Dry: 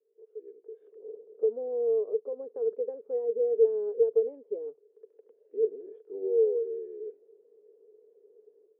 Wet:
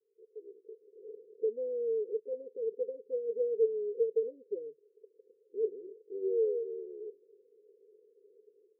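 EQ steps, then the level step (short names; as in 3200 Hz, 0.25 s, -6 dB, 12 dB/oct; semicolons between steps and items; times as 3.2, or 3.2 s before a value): rippled Chebyshev low-pass 530 Hz, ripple 6 dB; 0.0 dB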